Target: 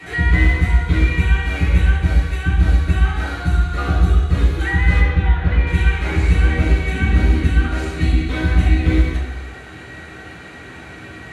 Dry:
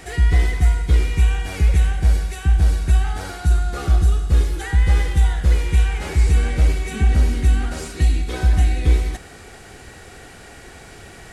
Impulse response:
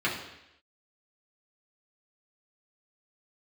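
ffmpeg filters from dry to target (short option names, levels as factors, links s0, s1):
-filter_complex "[0:a]asettb=1/sr,asplit=3[s0][s1][s2];[s0]atrim=end=4.994[s3];[s1]atrim=start=4.99:end=5.67,asetpts=PTS-STARTPTS,afade=t=in:d=0.004:c=qsin,afade=t=out:st=0.676:d=0.004:c=qsin,lowpass=2800[s4];[s2]atrim=start=5.666[s5];[s3][s4]acrossfade=d=0.004:c1=hsin:c2=qsin[s6];[s6][s5]acrossfade=d=0.004:c1=qsin:c2=hsin[s7];[1:a]atrim=start_sample=2205,asetrate=39249,aresample=44100[s8];[s7][s8]afir=irnorm=-1:irlink=0,volume=0.473"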